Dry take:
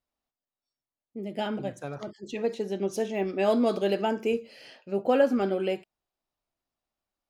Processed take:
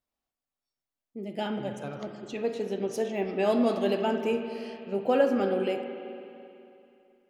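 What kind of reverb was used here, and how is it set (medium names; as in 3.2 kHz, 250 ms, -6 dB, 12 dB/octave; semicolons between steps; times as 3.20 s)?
spring tank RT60 2.8 s, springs 38/54 ms, chirp 70 ms, DRR 5.5 dB; trim -1.5 dB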